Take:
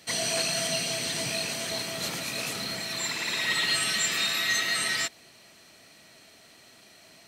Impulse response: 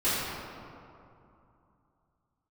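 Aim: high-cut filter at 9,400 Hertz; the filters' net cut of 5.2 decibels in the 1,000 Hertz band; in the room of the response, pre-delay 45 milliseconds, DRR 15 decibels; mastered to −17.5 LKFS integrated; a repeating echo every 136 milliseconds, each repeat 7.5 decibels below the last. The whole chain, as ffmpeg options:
-filter_complex "[0:a]lowpass=9400,equalizer=frequency=1000:width_type=o:gain=-8,aecho=1:1:136|272|408|544|680:0.422|0.177|0.0744|0.0312|0.0131,asplit=2[link_01][link_02];[1:a]atrim=start_sample=2205,adelay=45[link_03];[link_02][link_03]afir=irnorm=-1:irlink=0,volume=-28dB[link_04];[link_01][link_04]amix=inputs=2:normalize=0,volume=9.5dB"

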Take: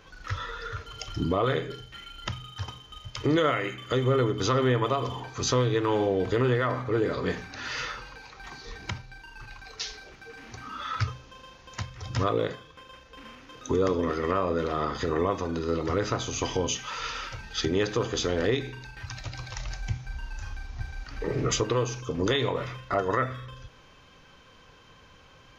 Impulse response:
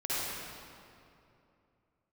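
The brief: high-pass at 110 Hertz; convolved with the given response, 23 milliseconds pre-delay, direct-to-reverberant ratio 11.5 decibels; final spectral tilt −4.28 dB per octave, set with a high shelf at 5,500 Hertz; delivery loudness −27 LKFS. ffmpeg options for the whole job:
-filter_complex "[0:a]highpass=110,highshelf=frequency=5500:gain=6,asplit=2[link_01][link_02];[1:a]atrim=start_sample=2205,adelay=23[link_03];[link_02][link_03]afir=irnorm=-1:irlink=0,volume=-19.5dB[link_04];[link_01][link_04]amix=inputs=2:normalize=0,volume=1.5dB"

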